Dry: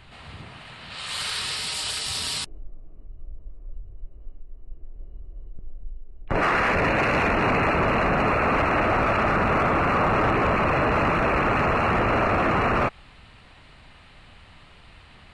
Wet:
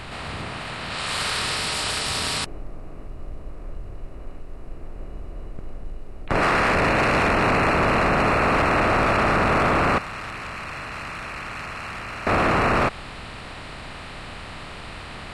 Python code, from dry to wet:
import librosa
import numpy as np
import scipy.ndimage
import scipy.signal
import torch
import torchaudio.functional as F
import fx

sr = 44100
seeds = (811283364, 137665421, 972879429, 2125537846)

y = fx.bin_compress(x, sr, power=0.6)
y = fx.tone_stack(y, sr, knobs='5-5-5', at=(9.98, 12.27))
y = y * librosa.db_to_amplitude(-1.0)